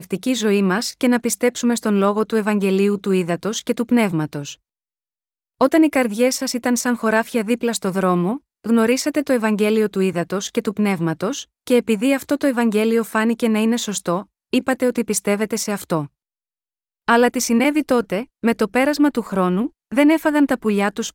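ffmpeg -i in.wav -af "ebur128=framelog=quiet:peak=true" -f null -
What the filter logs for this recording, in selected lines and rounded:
Integrated loudness:
  I:         -19.1 LUFS
  Threshold: -29.2 LUFS
Loudness range:
  LRA:         2.4 LU
  Threshold: -39.7 LUFS
  LRA low:   -21.0 LUFS
  LRA high:  -18.6 LUFS
True peak:
  Peak:       -3.8 dBFS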